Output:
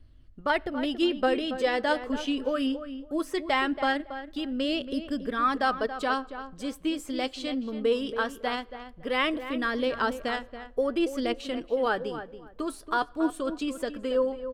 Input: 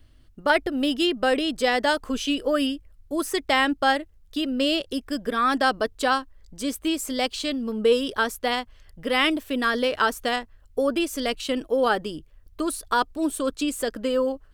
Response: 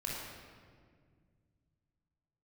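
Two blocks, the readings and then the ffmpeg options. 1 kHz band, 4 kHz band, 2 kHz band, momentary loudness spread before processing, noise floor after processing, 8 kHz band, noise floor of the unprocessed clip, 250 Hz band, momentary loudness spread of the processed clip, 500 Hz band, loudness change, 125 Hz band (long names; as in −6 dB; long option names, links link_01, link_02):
−4.5 dB, −7.5 dB, −5.5 dB, 8 LU, −51 dBFS, −12.5 dB, −54 dBFS, −3.5 dB, 8 LU, −4.0 dB, −4.5 dB, −4.0 dB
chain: -filter_complex "[0:a]lowpass=frequency=3000:poles=1,flanger=delay=0.2:depth=7.4:regen=62:speed=0.2:shape=sinusoidal,asplit=2[link_01][link_02];[link_02]adelay=279,lowpass=frequency=2100:poles=1,volume=-10.5dB,asplit=2[link_03][link_04];[link_04]adelay=279,lowpass=frequency=2100:poles=1,volume=0.21,asplit=2[link_05][link_06];[link_06]adelay=279,lowpass=frequency=2100:poles=1,volume=0.21[link_07];[link_01][link_03][link_05][link_07]amix=inputs=4:normalize=0,asplit=2[link_08][link_09];[1:a]atrim=start_sample=2205,asetrate=83790,aresample=44100[link_10];[link_09][link_10]afir=irnorm=-1:irlink=0,volume=-21dB[link_11];[link_08][link_11]amix=inputs=2:normalize=0"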